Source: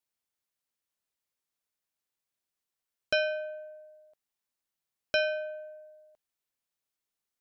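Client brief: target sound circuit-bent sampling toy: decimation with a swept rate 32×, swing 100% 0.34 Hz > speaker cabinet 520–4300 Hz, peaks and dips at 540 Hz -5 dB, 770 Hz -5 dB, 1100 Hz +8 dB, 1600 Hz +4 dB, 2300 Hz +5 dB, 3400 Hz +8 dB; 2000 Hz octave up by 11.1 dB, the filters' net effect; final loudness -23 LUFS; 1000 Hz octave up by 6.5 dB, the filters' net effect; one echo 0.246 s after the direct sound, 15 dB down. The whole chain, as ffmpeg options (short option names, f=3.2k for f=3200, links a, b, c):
-af "equalizer=f=1k:t=o:g=3.5,equalizer=f=2k:t=o:g=7.5,aecho=1:1:246:0.178,acrusher=samples=32:mix=1:aa=0.000001:lfo=1:lforange=32:lforate=0.34,highpass=520,equalizer=f=540:t=q:w=4:g=-5,equalizer=f=770:t=q:w=4:g=-5,equalizer=f=1.1k:t=q:w=4:g=8,equalizer=f=1.6k:t=q:w=4:g=4,equalizer=f=2.3k:t=q:w=4:g=5,equalizer=f=3.4k:t=q:w=4:g=8,lowpass=f=4.3k:w=0.5412,lowpass=f=4.3k:w=1.3066,volume=4.5dB"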